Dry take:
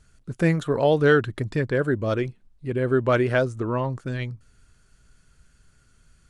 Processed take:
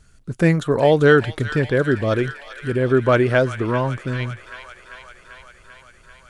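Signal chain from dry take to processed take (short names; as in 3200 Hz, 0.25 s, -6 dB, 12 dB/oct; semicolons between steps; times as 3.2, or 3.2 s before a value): 2.24–2.77 high shelf 5200 Hz +11.5 dB; thin delay 0.392 s, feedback 73%, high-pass 1500 Hz, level -8.5 dB; gain +4.5 dB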